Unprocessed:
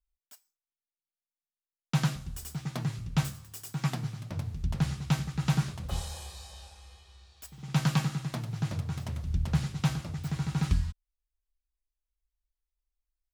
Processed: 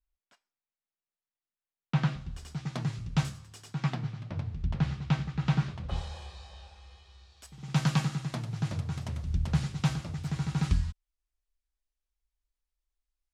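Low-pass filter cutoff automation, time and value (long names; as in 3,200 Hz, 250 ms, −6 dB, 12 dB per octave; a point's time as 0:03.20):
0:01.98 2,800 Hz
0:02.80 7,300 Hz
0:03.36 7,300 Hz
0:03.99 3,600 Hz
0:06.65 3,600 Hz
0:07.61 9,500 Hz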